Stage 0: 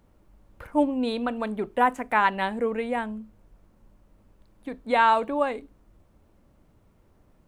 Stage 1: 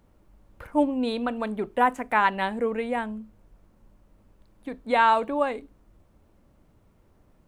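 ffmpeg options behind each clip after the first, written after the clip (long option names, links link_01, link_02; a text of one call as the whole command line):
ffmpeg -i in.wav -af anull out.wav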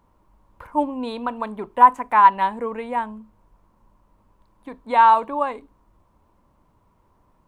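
ffmpeg -i in.wav -af "equalizer=frequency=1000:width=3.3:gain=15,volume=-2.5dB" out.wav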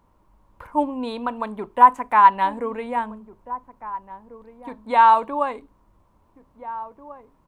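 ffmpeg -i in.wav -filter_complex "[0:a]asplit=2[link_01][link_02];[link_02]adelay=1691,volume=-15dB,highshelf=frequency=4000:gain=-38[link_03];[link_01][link_03]amix=inputs=2:normalize=0" out.wav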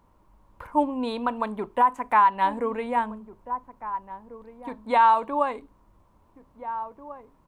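ffmpeg -i in.wav -af "alimiter=limit=-10.5dB:level=0:latency=1:release=251" out.wav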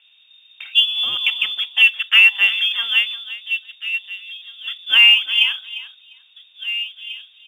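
ffmpeg -i in.wav -filter_complex "[0:a]lowpass=frequency=3100:width_type=q:width=0.5098,lowpass=frequency=3100:width_type=q:width=0.6013,lowpass=frequency=3100:width_type=q:width=0.9,lowpass=frequency=3100:width_type=q:width=2.563,afreqshift=-3700,aecho=1:1:350|700:0.178|0.0285,asplit=2[link_01][link_02];[link_02]acrusher=bits=5:mode=log:mix=0:aa=0.000001,volume=-8dB[link_03];[link_01][link_03]amix=inputs=2:normalize=0,volume=4dB" out.wav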